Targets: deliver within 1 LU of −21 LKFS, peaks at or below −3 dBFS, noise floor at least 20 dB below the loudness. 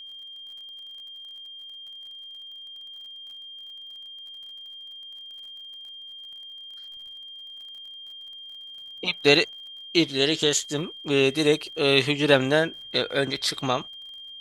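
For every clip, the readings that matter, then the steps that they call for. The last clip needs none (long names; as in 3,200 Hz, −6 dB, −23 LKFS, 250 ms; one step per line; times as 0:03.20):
crackle rate 43 per second; interfering tone 3,200 Hz; level of the tone −39 dBFS; integrated loudness −23.0 LKFS; sample peak −2.5 dBFS; target loudness −21.0 LKFS
→ click removal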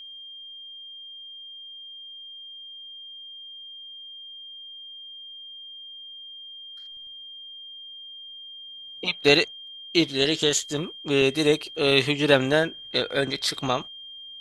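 crackle rate 0.069 per second; interfering tone 3,200 Hz; level of the tone −39 dBFS
→ notch filter 3,200 Hz, Q 30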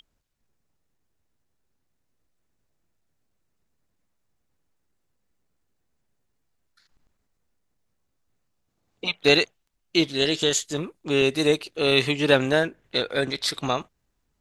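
interfering tone none found; integrated loudness −23.0 LKFS; sample peak −3.0 dBFS; target loudness −21.0 LKFS
→ level +2 dB
brickwall limiter −3 dBFS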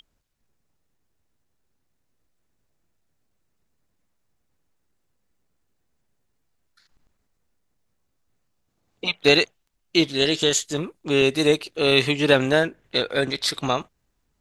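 integrated loudness −21.0 LKFS; sample peak −3.0 dBFS; background noise floor −73 dBFS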